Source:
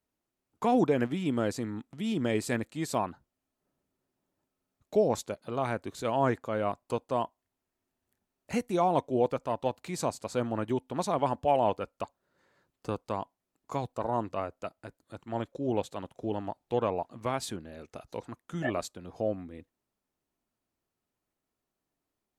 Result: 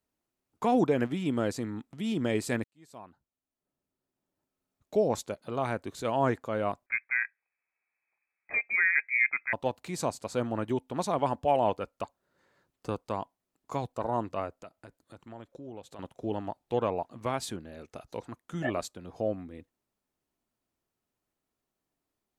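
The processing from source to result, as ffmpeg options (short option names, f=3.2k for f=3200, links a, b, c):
-filter_complex "[0:a]asettb=1/sr,asplit=3[a][b][c];[a]atrim=end=6.864[d];[b]atrim=start=6.86:end=9.53,asetpts=PTS-STARTPTS,afade=t=in:d=0.004:c=qsin,afade=t=out:st=2.666:d=0.004:c=qsin,lowpass=f=2.2k:t=q:w=0.5098,lowpass=f=2.2k:t=q:w=0.6013,lowpass=f=2.2k:t=q:w=0.9,lowpass=f=2.2k:t=q:w=2.563,afreqshift=-2600[e];[c]atrim=start=9.526[f];[d][e]acrossfade=d=0.004:c1=hsin:c2=qsin[g];[g][f]acrossfade=d=0.004:c1=qsin:c2=hsin,asettb=1/sr,asplit=3[h][i][j];[h]atrim=end=14.614[k];[i]atrim=start=14.61:end=15.99,asetpts=PTS-STARTPTS,afade=t=in:d=0.004:c=qsin,afade=t=out:st=1.376:d=0.004:c=qsin,acompressor=threshold=-46dB:ratio=2.5:attack=3.2:release=140:knee=1:detection=peak[l];[j]atrim=start=15.986[m];[k][l]acrossfade=d=0.004:c1=hsin:c2=qsin[n];[n][m]acrossfade=d=0.004:c1=qsin:c2=hsin,asplit=2[o][p];[o]atrim=end=2.64,asetpts=PTS-STARTPTS,afade=t=out:st=2.636:d=0.004:c=hsin[q];[p]atrim=start=2.64,asetpts=PTS-STARTPTS,afade=t=in:d=2.62[r];[q][r]concat=n=2:v=0:a=1"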